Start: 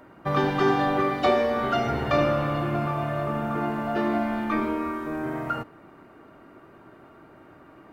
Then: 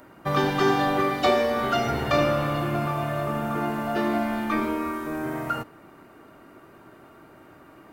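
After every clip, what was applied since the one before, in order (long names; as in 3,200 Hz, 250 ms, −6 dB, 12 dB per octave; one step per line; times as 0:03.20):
high-shelf EQ 4,700 Hz +12 dB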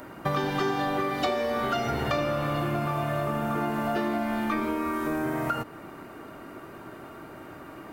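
downward compressor 5 to 1, threshold −32 dBFS, peak gain reduction 14.5 dB
level +6.5 dB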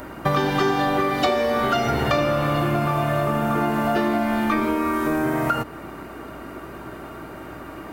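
mains hum 60 Hz, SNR 26 dB
level +6.5 dB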